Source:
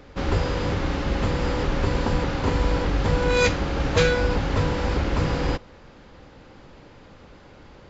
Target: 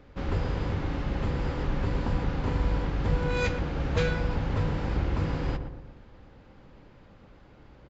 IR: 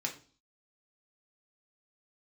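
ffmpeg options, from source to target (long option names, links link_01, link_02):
-filter_complex "[0:a]bass=frequency=250:gain=4,treble=frequency=4000:gain=-6,asplit=2[link_01][link_02];[link_02]adelay=119,lowpass=frequency=1100:poles=1,volume=-6.5dB,asplit=2[link_03][link_04];[link_04]adelay=119,lowpass=frequency=1100:poles=1,volume=0.5,asplit=2[link_05][link_06];[link_06]adelay=119,lowpass=frequency=1100:poles=1,volume=0.5,asplit=2[link_07][link_08];[link_08]adelay=119,lowpass=frequency=1100:poles=1,volume=0.5,asplit=2[link_09][link_10];[link_10]adelay=119,lowpass=frequency=1100:poles=1,volume=0.5,asplit=2[link_11][link_12];[link_12]adelay=119,lowpass=frequency=1100:poles=1,volume=0.5[link_13];[link_01][link_03][link_05][link_07][link_09][link_11][link_13]amix=inputs=7:normalize=0,volume=-8.5dB"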